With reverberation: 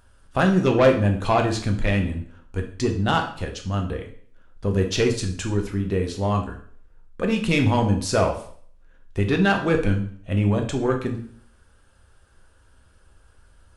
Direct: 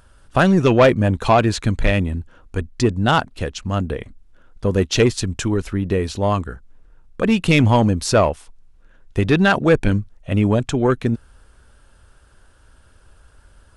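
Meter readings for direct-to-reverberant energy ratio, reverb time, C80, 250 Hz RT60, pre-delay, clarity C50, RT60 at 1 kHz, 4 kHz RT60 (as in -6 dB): 2.5 dB, 0.55 s, 13.5 dB, 0.50 s, 4 ms, 9.0 dB, 0.50 s, 0.50 s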